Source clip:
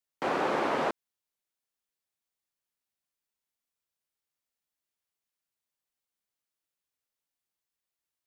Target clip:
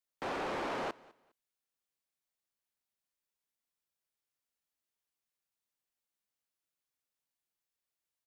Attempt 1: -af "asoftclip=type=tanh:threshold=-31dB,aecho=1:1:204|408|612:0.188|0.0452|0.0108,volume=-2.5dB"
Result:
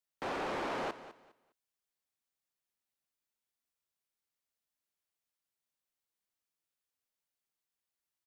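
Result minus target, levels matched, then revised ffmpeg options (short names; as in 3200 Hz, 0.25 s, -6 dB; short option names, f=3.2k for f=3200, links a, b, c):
echo-to-direct +8.5 dB
-af "asoftclip=type=tanh:threshold=-31dB,aecho=1:1:204|408:0.0708|0.017,volume=-2.5dB"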